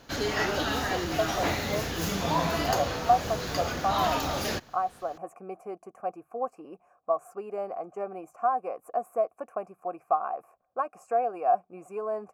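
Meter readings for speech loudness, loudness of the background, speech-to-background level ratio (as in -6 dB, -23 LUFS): -32.0 LUFS, -29.5 LUFS, -2.5 dB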